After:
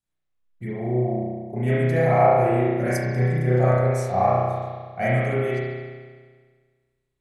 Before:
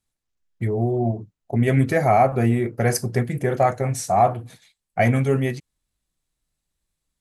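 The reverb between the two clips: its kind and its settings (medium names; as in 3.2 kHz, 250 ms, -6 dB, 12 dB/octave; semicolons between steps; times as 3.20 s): spring tank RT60 1.6 s, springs 32 ms, chirp 45 ms, DRR -9.5 dB; trim -10.5 dB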